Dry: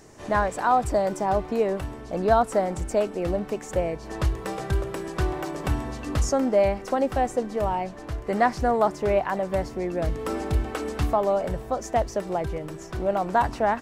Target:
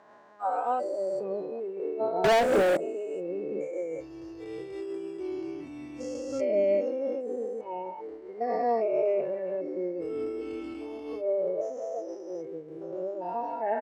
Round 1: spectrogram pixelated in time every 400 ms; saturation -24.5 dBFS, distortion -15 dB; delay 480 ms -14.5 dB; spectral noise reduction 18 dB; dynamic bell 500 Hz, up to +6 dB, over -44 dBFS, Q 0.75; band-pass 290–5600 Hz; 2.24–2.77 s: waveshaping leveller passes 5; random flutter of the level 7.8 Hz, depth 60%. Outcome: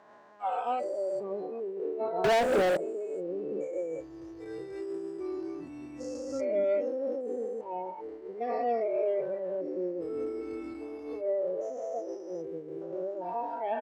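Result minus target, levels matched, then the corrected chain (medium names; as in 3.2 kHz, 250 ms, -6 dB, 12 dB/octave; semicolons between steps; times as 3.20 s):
saturation: distortion +14 dB
spectrogram pixelated in time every 400 ms; saturation -15 dBFS, distortion -29 dB; delay 480 ms -14.5 dB; spectral noise reduction 18 dB; dynamic bell 500 Hz, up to +6 dB, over -44 dBFS, Q 0.75; band-pass 290–5600 Hz; 2.24–2.77 s: waveshaping leveller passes 5; random flutter of the level 7.8 Hz, depth 60%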